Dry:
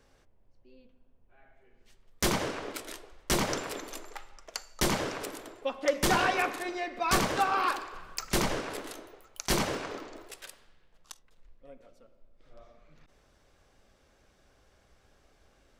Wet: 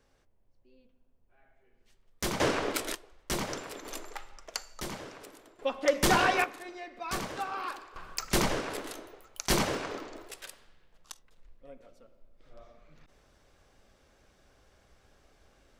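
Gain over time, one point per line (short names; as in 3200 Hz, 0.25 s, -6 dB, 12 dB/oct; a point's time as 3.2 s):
-5 dB
from 2.4 s +7 dB
from 2.95 s -5 dB
from 3.85 s +1.5 dB
from 4.81 s -11 dB
from 5.59 s +1.5 dB
from 6.44 s -8.5 dB
from 7.96 s +1 dB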